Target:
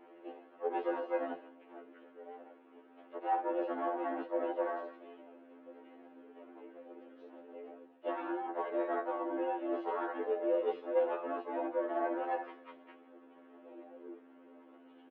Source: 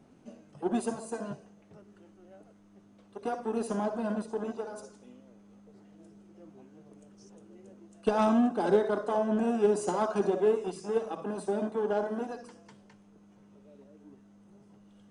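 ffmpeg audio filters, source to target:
ffmpeg -i in.wav -filter_complex "[0:a]areverse,acompressor=threshold=-35dB:ratio=16,areverse,asplit=4[link_01][link_02][link_03][link_04];[link_02]asetrate=29433,aresample=44100,atempo=1.49831,volume=-8dB[link_05];[link_03]asetrate=55563,aresample=44100,atempo=0.793701,volume=-7dB[link_06];[link_04]asetrate=58866,aresample=44100,atempo=0.749154,volume=-17dB[link_07];[link_01][link_05][link_06][link_07]amix=inputs=4:normalize=0,highpass=frequency=260:width_type=q:width=0.5412,highpass=frequency=260:width_type=q:width=1.307,lowpass=frequency=2900:width_type=q:width=0.5176,lowpass=frequency=2900:width_type=q:width=0.7071,lowpass=frequency=2900:width_type=q:width=1.932,afreqshift=61,aecho=1:1:6.3:0.43,afftfilt=real='re*2*eq(mod(b,4),0)':imag='im*2*eq(mod(b,4),0)':win_size=2048:overlap=0.75,volume=5.5dB" out.wav

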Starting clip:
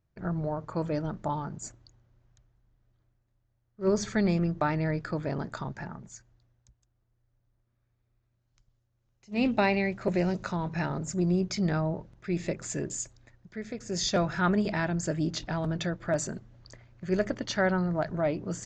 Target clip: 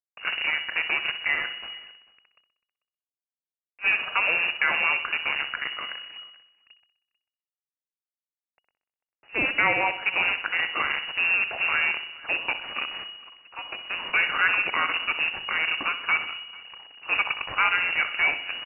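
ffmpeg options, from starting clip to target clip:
ffmpeg -i in.wav -filter_complex "[0:a]equalizer=frequency=220:width=0.43:gain=-13,asplit=2[link_01][link_02];[link_02]alimiter=level_in=4.5dB:limit=-24dB:level=0:latency=1:release=86,volume=-4.5dB,volume=0.5dB[link_03];[link_01][link_03]amix=inputs=2:normalize=0,acontrast=40,acrusher=bits=5:dc=4:mix=0:aa=0.000001,asplit=2[link_04][link_05];[link_05]aecho=0:1:63|126|189|252|315|378:0.251|0.141|0.0788|0.0441|0.0247|0.0138[link_06];[link_04][link_06]amix=inputs=2:normalize=0,lowpass=frequency=2500:width_type=q:width=0.5098,lowpass=frequency=2500:width_type=q:width=0.6013,lowpass=frequency=2500:width_type=q:width=0.9,lowpass=frequency=2500:width_type=q:width=2.563,afreqshift=-2900,asplit=2[link_07][link_08];[link_08]adelay=443.1,volume=-22dB,highshelf=frequency=4000:gain=-9.97[link_09];[link_07][link_09]amix=inputs=2:normalize=0" out.wav

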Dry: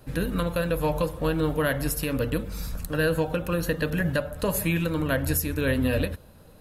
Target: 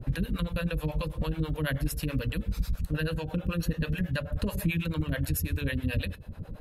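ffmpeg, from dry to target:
ffmpeg -i in.wav -filter_complex "[0:a]bass=frequency=250:gain=11,treble=frequency=4000:gain=-13,bandreject=frequency=433.1:width_type=h:width=4,bandreject=frequency=866.2:width_type=h:width=4,bandreject=frequency=1299.3:width_type=h:width=4,bandreject=frequency=1732.4:width_type=h:width=4,bandreject=frequency=2165.5:width_type=h:width=4,bandreject=frequency=2598.6:width_type=h:width=4,bandreject=frequency=3031.7:width_type=h:width=4,bandreject=frequency=3464.8:width_type=h:width=4,bandreject=frequency=3897.9:width_type=h:width=4,bandreject=frequency=4331:width_type=h:width=4,bandreject=frequency=4764.1:width_type=h:width=4,bandreject=frequency=5197.2:width_type=h:width=4,bandreject=frequency=5630.3:width_type=h:width=4,bandreject=frequency=6063.4:width_type=h:width=4,bandreject=frequency=6496.5:width_type=h:width=4,bandreject=frequency=6929.6:width_type=h:width=4,bandreject=frequency=7362.7:width_type=h:width=4,bandreject=frequency=7795.8:width_type=h:width=4,bandreject=frequency=8228.9:width_type=h:width=4,bandreject=frequency=8662:width_type=h:width=4,bandreject=frequency=9095.1:width_type=h:width=4,bandreject=frequency=9528.2:width_type=h:width=4,bandreject=frequency=9961.3:width_type=h:width=4,bandreject=frequency=10394.4:width_type=h:width=4,bandreject=frequency=10827.5:width_type=h:width=4,bandreject=frequency=11260.6:width_type=h:width=4,bandreject=frequency=11693.7:width_type=h:width=4,bandreject=frequency=12126.8:width_type=h:width=4,bandreject=frequency=12559.9:width_type=h:width=4,bandreject=frequency=12993:width_type=h:width=4,bandreject=frequency=13426.1:width_type=h:width=4,bandreject=frequency=13859.2:width_type=h:width=4,bandreject=frequency=14292.3:width_type=h:width=4,bandreject=frequency=14725.4:width_type=h:width=4,acrossover=split=2500[link_01][link_02];[link_01]acompressor=threshold=-30dB:ratio=10[link_03];[link_03][link_02]amix=inputs=2:normalize=0,acrossover=split=450[link_04][link_05];[link_04]aeval=exprs='val(0)*(1-1/2+1/2*cos(2*PI*9.2*n/s))':channel_layout=same[link_06];[link_05]aeval=exprs='val(0)*(1-1/2-1/2*cos(2*PI*9.2*n/s))':channel_layout=same[link_07];[link_06][link_07]amix=inputs=2:normalize=0,volume=7.5dB" out.wav

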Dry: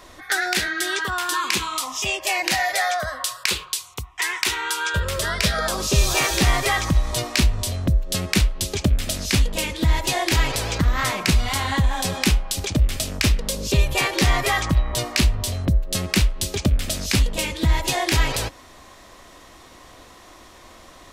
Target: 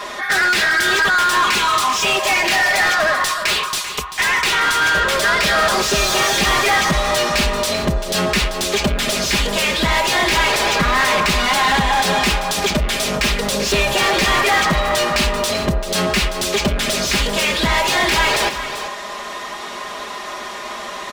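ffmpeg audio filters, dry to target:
ffmpeg -i in.wav -filter_complex "[0:a]aecho=1:1:4.9:0.96,asplit=2[link_01][link_02];[link_02]highpass=frequency=720:poles=1,volume=30dB,asoftclip=type=tanh:threshold=-2dB[link_03];[link_01][link_03]amix=inputs=2:normalize=0,lowpass=frequency=3000:poles=1,volume=-6dB,asplit=2[link_04][link_05];[link_05]aecho=0:1:389:0.282[link_06];[link_04][link_06]amix=inputs=2:normalize=0,volume=-5.5dB" out.wav

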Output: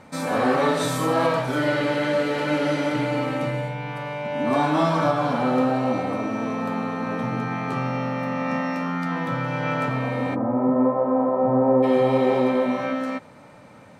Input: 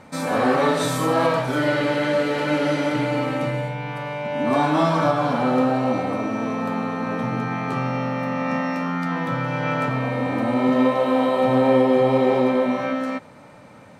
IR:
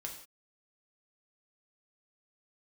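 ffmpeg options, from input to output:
-filter_complex "[0:a]asplit=3[link_01][link_02][link_03];[link_01]afade=type=out:start_time=10.34:duration=0.02[link_04];[link_02]lowpass=frequency=1200:width=0.5412,lowpass=frequency=1200:width=1.3066,afade=type=in:start_time=10.34:duration=0.02,afade=type=out:start_time=11.82:duration=0.02[link_05];[link_03]afade=type=in:start_time=11.82:duration=0.02[link_06];[link_04][link_05][link_06]amix=inputs=3:normalize=0,volume=-1.5dB"

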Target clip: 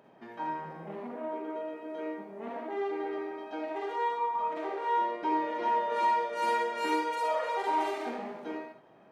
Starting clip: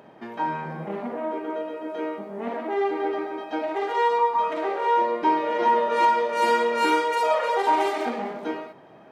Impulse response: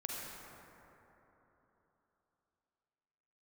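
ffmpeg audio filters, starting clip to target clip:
-filter_complex "[1:a]atrim=start_sample=2205,atrim=end_sample=3969[link_01];[0:a][link_01]afir=irnorm=-1:irlink=0,asplit=3[link_02][link_03][link_04];[link_02]afade=type=out:start_time=3.94:duration=0.02[link_05];[link_03]adynamicequalizer=threshold=0.0112:dfrequency=1800:dqfactor=0.7:tfrequency=1800:tqfactor=0.7:attack=5:release=100:ratio=0.375:range=3:mode=cutabove:tftype=highshelf,afade=type=in:start_time=3.94:duration=0.02,afade=type=out:start_time=4.55:duration=0.02[link_06];[link_04]afade=type=in:start_time=4.55:duration=0.02[link_07];[link_05][link_06][link_07]amix=inputs=3:normalize=0,volume=-6.5dB"

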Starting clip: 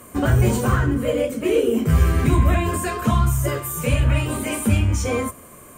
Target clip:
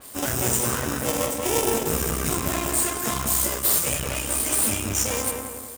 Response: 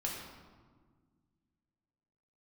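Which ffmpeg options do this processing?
-filter_complex "[0:a]asplit=2[link_01][link_02];[link_02]acrusher=samples=33:mix=1:aa=0.000001,volume=-7dB[link_03];[link_01][link_03]amix=inputs=2:normalize=0,asuperstop=centerf=4300:order=4:qfactor=5.2,bass=frequency=250:gain=-11,treble=frequency=4000:gain=14,asplit=2[link_04][link_05];[link_05]adelay=187,lowpass=frequency=2000:poles=1,volume=-3dB,asplit=2[link_06][link_07];[link_07]adelay=187,lowpass=frequency=2000:poles=1,volume=0.5,asplit=2[link_08][link_09];[link_09]adelay=187,lowpass=frequency=2000:poles=1,volume=0.5,asplit=2[link_10][link_11];[link_11]adelay=187,lowpass=frequency=2000:poles=1,volume=0.5,asplit=2[link_12][link_13];[link_13]adelay=187,lowpass=frequency=2000:poles=1,volume=0.5,asplit=2[link_14][link_15];[link_15]adelay=187,lowpass=frequency=2000:poles=1,volume=0.5,asplit=2[link_16][link_17];[link_17]adelay=187,lowpass=frequency=2000:poles=1,volume=0.5[link_18];[link_06][link_08][link_10][link_12][link_14][link_16][link_18]amix=inputs=7:normalize=0[link_19];[link_04][link_19]amix=inputs=2:normalize=0,aeval=exprs='max(val(0),0)':channel_layout=same,highpass=45,adynamicequalizer=threshold=0.0126:dfrequency=4200:dqfactor=0.7:tfrequency=4200:tqfactor=0.7:attack=5:release=100:ratio=0.375:range=1.5:mode=boostabove:tftype=highshelf,volume=-2.5dB"

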